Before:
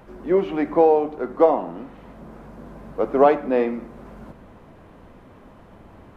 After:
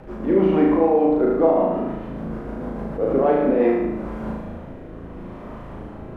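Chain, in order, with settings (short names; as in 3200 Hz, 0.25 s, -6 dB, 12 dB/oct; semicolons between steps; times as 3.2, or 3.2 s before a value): high shelf 2600 Hz -10.5 dB; in parallel at -2 dB: compressor, threshold -27 dBFS, peak gain reduction 15.5 dB; on the sum: limiter -15 dBFS, peak gain reduction 11.5 dB; rotary speaker horn 6.7 Hz, later 0.75 Hz, at 3.13; on a send: flutter echo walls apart 6.3 m, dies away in 0.98 s; on the sum: attack slew limiter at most 170 dB/s; gain +4.5 dB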